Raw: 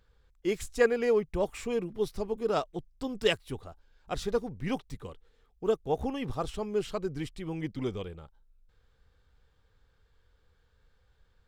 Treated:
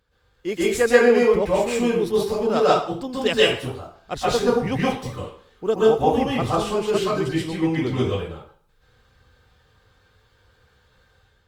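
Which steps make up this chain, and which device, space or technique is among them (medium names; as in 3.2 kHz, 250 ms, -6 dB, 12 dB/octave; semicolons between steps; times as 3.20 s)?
far-field microphone of a smart speaker (reverberation RT60 0.50 s, pre-delay 118 ms, DRR -7.5 dB; high-pass 86 Hz 6 dB/octave; level rider gain up to 5.5 dB; Opus 48 kbps 48 kHz)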